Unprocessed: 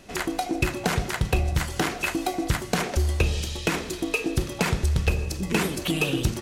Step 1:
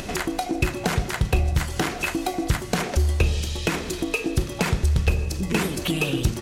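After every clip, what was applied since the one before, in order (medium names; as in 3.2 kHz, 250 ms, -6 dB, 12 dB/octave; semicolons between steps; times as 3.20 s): bass shelf 150 Hz +3.5 dB; upward compressor, threshold -22 dBFS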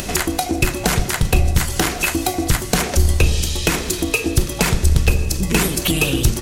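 octave divider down 2 oct, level -3 dB; treble shelf 5.6 kHz +11 dB; trim +4.5 dB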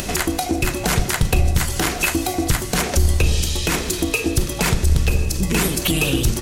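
peak limiter -7 dBFS, peak gain reduction 5.5 dB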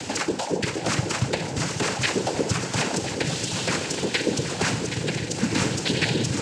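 noise-vocoded speech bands 8; shuffle delay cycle 1030 ms, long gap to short 3:1, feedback 50%, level -9 dB; trim -3.5 dB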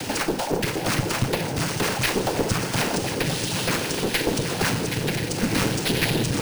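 one-sided clip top -28 dBFS; careless resampling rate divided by 3×, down filtered, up hold; trim +3.5 dB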